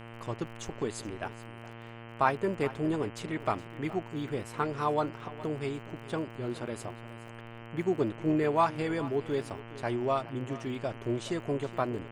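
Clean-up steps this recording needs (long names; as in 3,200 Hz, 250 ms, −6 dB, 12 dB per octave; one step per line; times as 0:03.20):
click removal
hum removal 115.9 Hz, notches 27
echo removal 418 ms −17 dB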